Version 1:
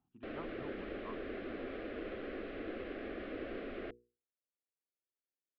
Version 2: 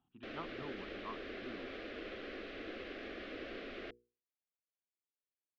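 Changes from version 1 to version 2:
background -5.5 dB; master: remove tape spacing loss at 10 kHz 35 dB

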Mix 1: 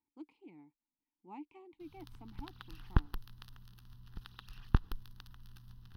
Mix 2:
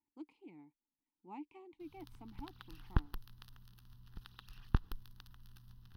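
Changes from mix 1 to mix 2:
background -3.5 dB; master: add treble shelf 8.4 kHz +4 dB

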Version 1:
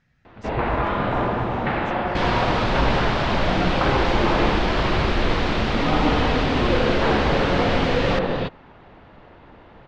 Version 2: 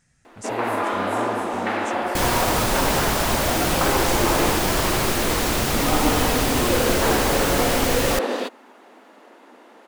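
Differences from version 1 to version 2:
first sound: add brick-wall FIR high-pass 210 Hz; master: remove low-pass 4 kHz 24 dB/octave

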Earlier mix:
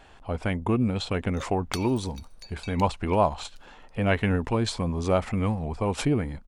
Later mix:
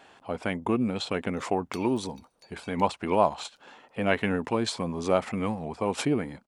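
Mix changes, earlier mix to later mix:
background -10.0 dB; master: add high-pass 190 Hz 12 dB/octave

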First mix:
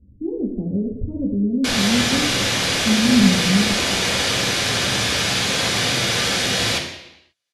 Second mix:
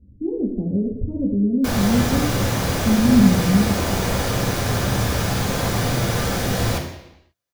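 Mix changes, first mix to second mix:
background: remove frequency weighting D; master: remove Chebyshev low-pass 12 kHz, order 8

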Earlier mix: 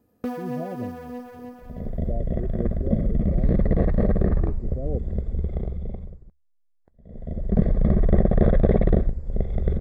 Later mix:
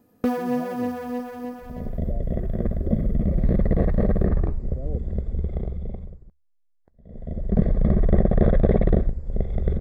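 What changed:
speech -5.0 dB; first sound +6.5 dB

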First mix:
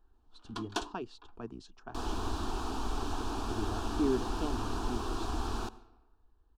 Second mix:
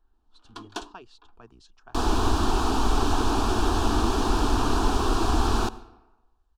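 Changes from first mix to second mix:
speech: add peaking EQ 240 Hz -11.5 dB 2.5 oct; second sound +12.0 dB

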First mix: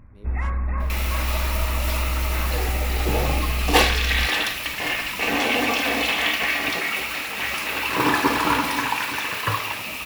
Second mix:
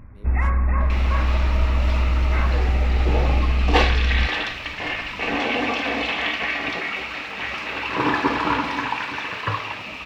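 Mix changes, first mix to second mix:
first sound +5.0 dB; second sound: add distance through air 170 m

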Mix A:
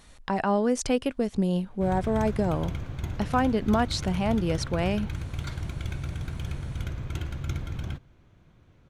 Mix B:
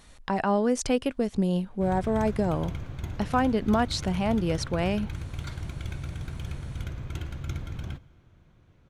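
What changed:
background -3.5 dB; reverb: on, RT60 2.9 s

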